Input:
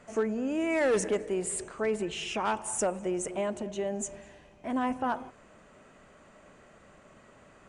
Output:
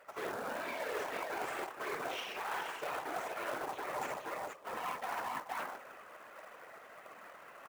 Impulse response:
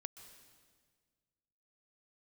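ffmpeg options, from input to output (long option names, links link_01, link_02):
-filter_complex "[0:a]asplit=2[link_01][link_02];[1:a]atrim=start_sample=2205[link_03];[link_02][link_03]afir=irnorm=-1:irlink=0,volume=-5dB[link_04];[link_01][link_04]amix=inputs=2:normalize=0,aeval=exprs='0.141*(cos(1*acos(clip(val(0)/0.141,-1,1)))-cos(1*PI/2))+0.0141*(cos(4*acos(clip(val(0)/0.141,-1,1)))-cos(4*PI/2))+0.00355*(cos(7*acos(clip(val(0)/0.141,-1,1)))-cos(7*PI/2))+0.0447*(cos(8*acos(clip(val(0)/0.141,-1,1)))-cos(8*PI/2))':channel_layout=same,highpass=670,lowpass=2200,aecho=1:1:57|61|126|470|475:0.562|0.211|0.1|0.316|0.237,areverse,acompressor=threshold=-41dB:ratio=12,areverse,afftfilt=real='hypot(re,im)*cos(2*PI*random(0))':imag='hypot(re,im)*sin(2*PI*random(1))':win_size=512:overlap=0.75,acrusher=bits=3:mode=log:mix=0:aa=0.000001,volume=10.5dB"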